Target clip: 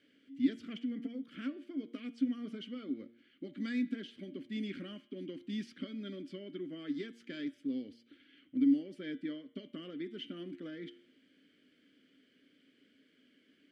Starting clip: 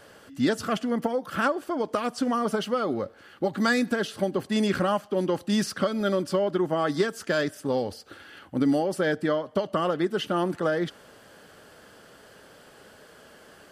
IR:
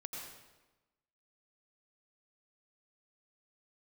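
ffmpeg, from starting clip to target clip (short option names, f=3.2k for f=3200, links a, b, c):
-filter_complex "[0:a]asplit=3[a][b][c];[a]bandpass=f=270:t=q:w=8,volume=0dB[d];[b]bandpass=f=2.29k:t=q:w=8,volume=-6dB[e];[c]bandpass=f=3.01k:t=q:w=8,volume=-9dB[f];[d][e][f]amix=inputs=3:normalize=0,bandreject=f=116.8:t=h:w=4,bandreject=f=233.6:t=h:w=4,bandreject=f=350.4:t=h:w=4,bandreject=f=467.2:t=h:w=4,bandreject=f=584:t=h:w=4,bandreject=f=700.8:t=h:w=4,bandreject=f=817.6:t=h:w=4,bandreject=f=934.4:t=h:w=4,bandreject=f=1.0512k:t=h:w=4,bandreject=f=1.168k:t=h:w=4,bandreject=f=1.2848k:t=h:w=4,bandreject=f=1.4016k:t=h:w=4,bandreject=f=1.5184k:t=h:w=4,bandreject=f=1.6352k:t=h:w=4,bandreject=f=1.752k:t=h:w=4,bandreject=f=1.8688k:t=h:w=4,bandreject=f=1.9856k:t=h:w=4,bandreject=f=2.1024k:t=h:w=4,bandreject=f=2.2192k:t=h:w=4,bandreject=f=2.336k:t=h:w=4,bandreject=f=2.4528k:t=h:w=4,bandreject=f=2.5696k:t=h:w=4,bandreject=f=2.6864k:t=h:w=4,bandreject=f=2.8032k:t=h:w=4,bandreject=f=2.92k:t=h:w=4,bandreject=f=3.0368k:t=h:w=4,bandreject=f=3.1536k:t=h:w=4,bandreject=f=3.2704k:t=h:w=4,bandreject=f=3.3872k:t=h:w=4,bandreject=f=3.504k:t=h:w=4,bandreject=f=3.6208k:t=h:w=4,bandreject=f=3.7376k:t=h:w=4,bandreject=f=3.8544k:t=h:w=4,bandreject=f=3.9712k:t=h:w=4,volume=-2dB"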